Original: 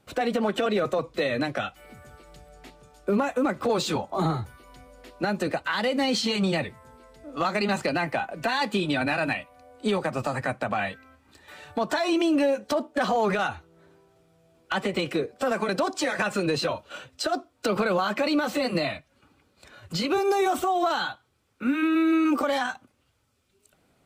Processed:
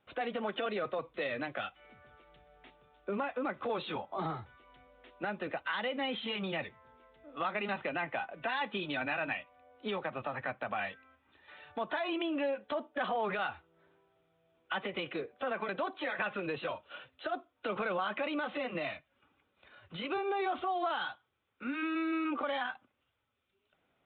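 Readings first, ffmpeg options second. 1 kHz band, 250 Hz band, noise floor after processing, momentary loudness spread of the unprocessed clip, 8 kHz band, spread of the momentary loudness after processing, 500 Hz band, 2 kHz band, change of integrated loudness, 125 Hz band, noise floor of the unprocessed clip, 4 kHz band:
-8.5 dB, -13.0 dB, -78 dBFS, 9 LU, under -40 dB, 9 LU, -10.5 dB, -7.0 dB, -10.0 dB, -14.5 dB, -68 dBFS, -10.0 dB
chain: -af "lowshelf=f=410:g=-9.5,aresample=8000,aresample=44100,volume=-6.5dB"

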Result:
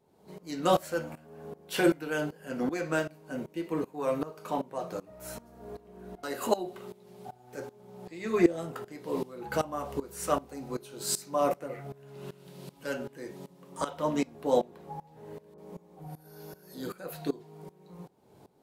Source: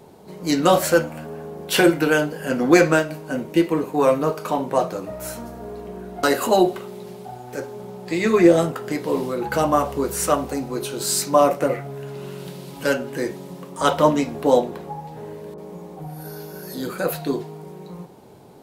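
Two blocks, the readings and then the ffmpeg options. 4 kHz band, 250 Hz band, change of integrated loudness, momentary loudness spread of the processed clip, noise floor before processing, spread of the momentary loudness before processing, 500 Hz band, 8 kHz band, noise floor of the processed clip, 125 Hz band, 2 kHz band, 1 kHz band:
-12.5 dB, -11.5 dB, -12.0 dB, 21 LU, -40 dBFS, 19 LU, -12.0 dB, -11.5 dB, -60 dBFS, -12.0 dB, -13.0 dB, -11.5 dB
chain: -af "aeval=exprs='val(0)*pow(10,-19*if(lt(mod(-2.6*n/s,1),2*abs(-2.6)/1000),1-mod(-2.6*n/s,1)/(2*abs(-2.6)/1000),(mod(-2.6*n/s,1)-2*abs(-2.6)/1000)/(1-2*abs(-2.6)/1000))/20)':c=same,volume=-5.5dB"

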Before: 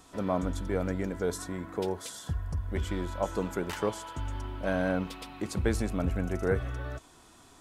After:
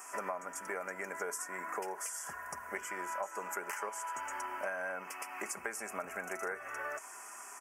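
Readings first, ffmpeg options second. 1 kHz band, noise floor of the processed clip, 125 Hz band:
0.0 dB, -49 dBFS, -29.5 dB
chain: -af "highpass=1k,aecho=1:1:5:0.39,acompressor=threshold=-47dB:ratio=10,asuperstop=centerf=3800:order=4:qfactor=1,volume=12dB"

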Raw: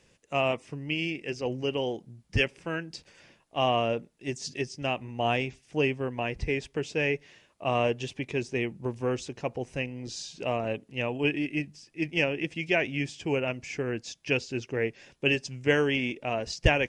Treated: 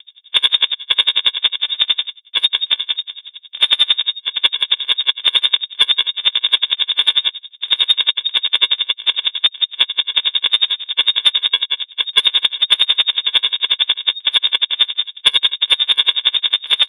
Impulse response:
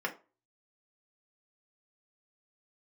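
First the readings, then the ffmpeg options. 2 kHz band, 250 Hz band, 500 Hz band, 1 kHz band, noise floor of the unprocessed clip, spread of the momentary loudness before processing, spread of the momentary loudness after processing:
+7.0 dB, under -15 dB, under -10 dB, +0.5 dB, -66 dBFS, 8 LU, 5 LU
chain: -af "highpass=180,aecho=1:1:163:0.398,aeval=exprs='0.335*(cos(1*acos(clip(val(0)/0.335,-1,1)))-cos(1*PI/2))+0.0335*(cos(4*acos(clip(val(0)/0.335,-1,1)))-cos(4*PI/2))':c=same,tiltshelf=f=920:g=-9,aresample=16000,acrusher=samples=27:mix=1:aa=0.000001,aresample=44100,aecho=1:1:7.2:0.34,asoftclip=type=hard:threshold=-13.5dB,adynamicsmooth=sensitivity=6.5:basefreq=1.5k,lowpass=f=3.1k:t=q:w=0.5098,lowpass=f=3.1k:t=q:w=0.6013,lowpass=f=3.1k:t=q:w=0.9,lowpass=f=3.1k:t=q:w=2.563,afreqshift=-3700,asoftclip=type=tanh:threshold=-14dB,alimiter=level_in=24dB:limit=-1dB:release=50:level=0:latency=1,aeval=exprs='val(0)*pow(10,-32*(0.5-0.5*cos(2*PI*11*n/s))/20)':c=same"

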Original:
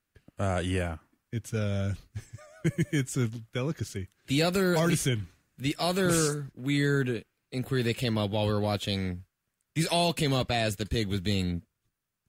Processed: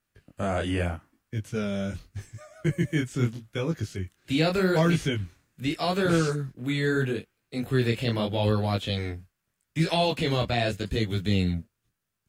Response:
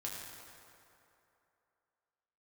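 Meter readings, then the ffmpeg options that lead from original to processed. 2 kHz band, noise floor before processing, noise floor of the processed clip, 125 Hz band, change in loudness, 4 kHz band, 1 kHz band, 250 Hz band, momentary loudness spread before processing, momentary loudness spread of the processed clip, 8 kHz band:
+2.0 dB, -83 dBFS, -81 dBFS, +2.0 dB, +1.5 dB, +0.5 dB, +2.0 dB, +2.0 dB, 12 LU, 13 LU, -8.0 dB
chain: -filter_complex "[0:a]acrossover=split=4700[a][b];[b]acompressor=threshold=-49dB:ratio=4:attack=1:release=60[c];[a][c]amix=inputs=2:normalize=0,flanger=delay=18:depth=7.9:speed=0.81,volume=5dB"

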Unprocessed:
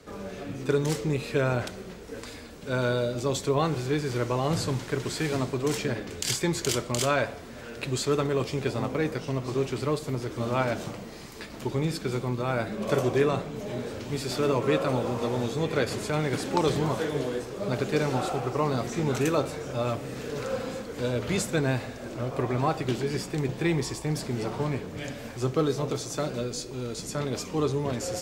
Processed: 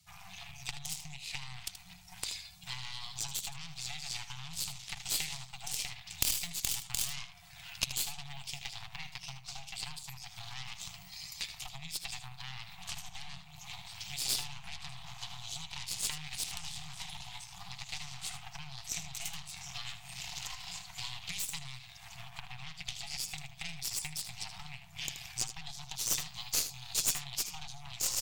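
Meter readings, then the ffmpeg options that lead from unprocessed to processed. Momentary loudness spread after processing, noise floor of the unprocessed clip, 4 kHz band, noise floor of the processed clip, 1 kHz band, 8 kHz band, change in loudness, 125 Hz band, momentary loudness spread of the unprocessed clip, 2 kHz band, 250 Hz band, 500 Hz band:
13 LU, -41 dBFS, -0.5 dB, -53 dBFS, -17.0 dB, +1.5 dB, -9.5 dB, -19.5 dB, 9 LU, -9.5 dB, -27.0 dB, -33.0 dB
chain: -filter_complex "[0:a]afftdn=nr=16:nf=-49,highshelf=f=11k:g=12,aeval=exprs='0.376*(cos(1*acos(clip(val(0)/0.376,-1,1)))-cos(1*PI/2))+0.15*(cos(8*acos(clip(val(0)/0.376,-1,1)))-cos(8*PI/2))':c=same,acrossover=split=300[a][b];[b]acompressor=threshold=-24dB:ratio=6[c];[a][c]amix=inputs=2:normalize=0,highshelf=f=4.9k:g=-4,acompressor=threshold=-32dB:ratio=6,afftfilt=real='re*(1-between(b*sr/4096,190,670))':imag='im*(1-between(b*sr/4096,190,670))':win_size=4096:overlap=0.75,aexciter=amount=9.9:drive=3.7:freq=2.3k,aeval=exprs='(tanh(1.78*val(0)+0.65)-tanh(0.65))/1.78':c=same,aecho=1:1:78:0.282,volume=-8dB"

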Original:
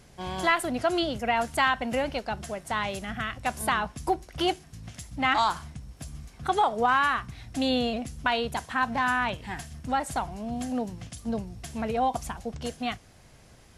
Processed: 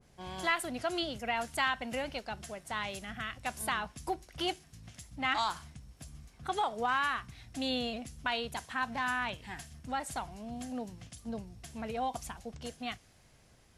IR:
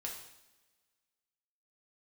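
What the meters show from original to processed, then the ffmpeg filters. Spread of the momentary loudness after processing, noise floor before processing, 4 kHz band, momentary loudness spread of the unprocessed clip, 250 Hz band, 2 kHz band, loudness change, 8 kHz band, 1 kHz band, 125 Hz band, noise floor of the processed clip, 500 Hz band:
14 LU, -54 dBFS, -4.5 dB, 14 LU, -9.0 dB, -6.0 dB, -7.5 dB, -4.5 dB, -8.5 dB, -9.0 dB, -63 dBFS, -9.0 dB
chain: -af "adynamicequalizer=threshold=0.0126:dfrequency=1600:dqfactor=0.7:tfrequency=1600:tqfactor=0.7:attack=5:release=100:ratio=0.375:range=2.5:mode=boostabove:tftype=highshelf,volume=-9dB"

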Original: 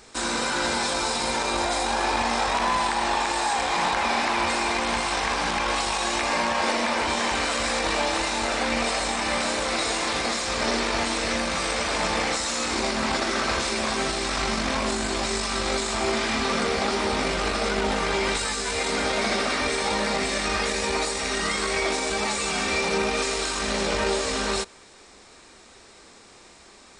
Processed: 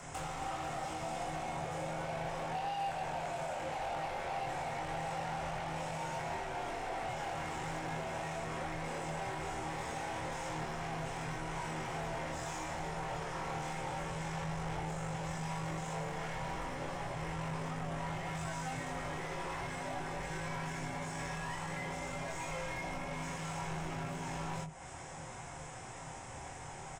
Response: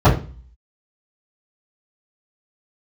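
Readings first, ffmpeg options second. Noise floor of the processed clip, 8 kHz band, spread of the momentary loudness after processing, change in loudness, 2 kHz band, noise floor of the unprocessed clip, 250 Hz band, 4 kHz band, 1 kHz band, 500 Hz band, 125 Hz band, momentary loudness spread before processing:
-47 dBFS, -19.0 dB, 2 LU, -15.5 dB, -16.5 dB, -50 dBFS, -13.5 dB, -22.5 dB, -12.5 dB, -14.5 dB, -3.0 dB, 2 LU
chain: -filter_complex "[0:a]acrossover=split=6900[a][b];[b]acompressor=threshold=-43dB:ratio=4:attack=1:release=60[c];[a][c]amix=inputs=2:normalize=0,asoftclip=type=hard:threshold=-19.5dB,equalizer=f=4.8k:t=o:w=0.27:g=-13.5,acompressor=threshold=-39dB:ratio=12,equalizer=f=400:t=o:w=0.33:g=-12,equalizer=f=1k:t=o:w=0.33:g=9,equalizer=f=4k:t=o:w=0.33:g=-11,asplit=2[d][e];[1:a]atrim=start_sample=2205[f];[e][f]afir=irnorm=-1:irlink=0,volume=-33.5dB[g];[d][g]amix=inputs=2:normalize=0,asoftclip=type=tanh:threshold=-37.5dB,asplit=2[h][i];[i]adelay=23,volume=-5dB[j];[h][j]amix=inputs=2:normalize=0,afreqshift=-210,volume=1.5dB"

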